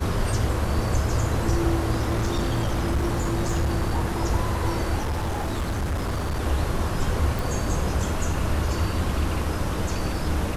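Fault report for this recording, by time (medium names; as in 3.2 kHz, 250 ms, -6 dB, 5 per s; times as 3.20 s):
1.92–4.18 s: clipped -19 dBFS
5.00–6.40 s: clipped -22.5 dBFS
7.39 s: pop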